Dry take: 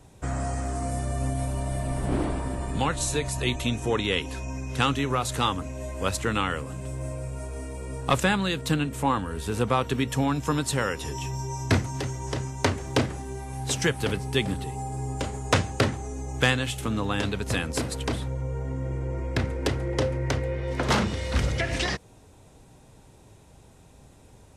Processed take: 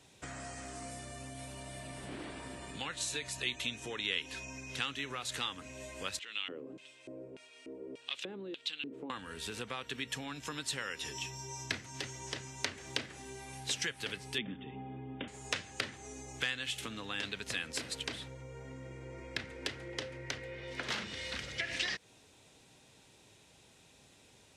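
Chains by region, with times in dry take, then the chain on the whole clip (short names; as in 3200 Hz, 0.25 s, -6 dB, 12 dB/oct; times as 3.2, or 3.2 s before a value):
6.19–9.1 bell 320 Hz +9.5 dB 2.5 oct + compressor 2.5:1, threshold -23 dBFS + LFO band-pass square 1.7 Hz 360–3200 Hz
14.38–15.28 brick-wall FIR low-pass 3700 Hz + bell 230 Hz +14 dB 1.2 oct
whole clip: dynamic EQ 1700 Hz, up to +4 dB, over -43 dBFS, Q 2.4; compressor 4:1, threshold -31 dBFS; weighting filter D; gain -8.5 dB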